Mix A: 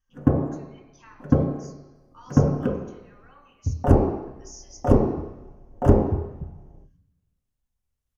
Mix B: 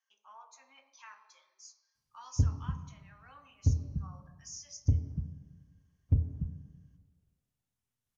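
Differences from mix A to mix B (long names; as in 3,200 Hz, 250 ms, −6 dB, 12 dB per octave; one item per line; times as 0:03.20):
speech: send −6.0 dB
first sound: muted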